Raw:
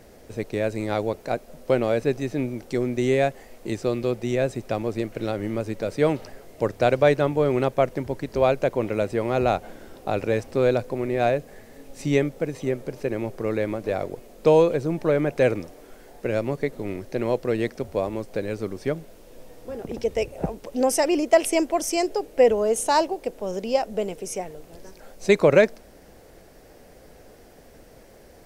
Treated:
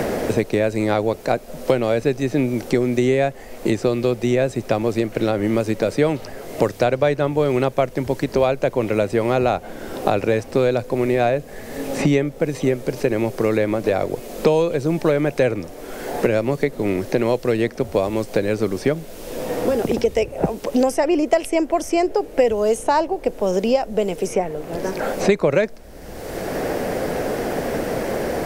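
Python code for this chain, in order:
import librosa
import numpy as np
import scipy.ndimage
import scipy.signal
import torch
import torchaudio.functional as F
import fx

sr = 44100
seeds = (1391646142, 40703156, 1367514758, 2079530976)

y = fx.band_squash(x, sr, depth_pct=100)
y = y * 10.0 ** (4.0 / 20.0)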